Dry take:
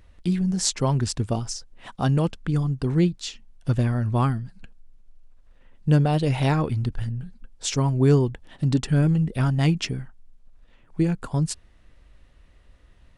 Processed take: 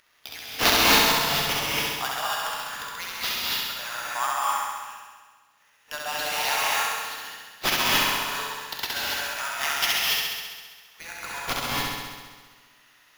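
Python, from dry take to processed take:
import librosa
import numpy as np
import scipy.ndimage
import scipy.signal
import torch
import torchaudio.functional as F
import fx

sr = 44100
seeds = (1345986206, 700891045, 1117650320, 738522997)

y = scipy.signal.sosfilt(scipy.signal.bessel(8, 1300.0, 'highpass', norm='mag', fs=sr, output='sos'), x)
y = fx.sample_hold(y, sr, seeds[0], rate_hz=8400.0, jitter_pct=0)
y = fx.room_flutter(y, sr, wall_m=11.4, rt60_s=1.5)
y = fx.rev_gated(y, sr, seeds[1], gate_ms=310, shape='rising', drr_db=-3.5)
y = F.gain(torch.from_numpy(y), 3.5).numpy()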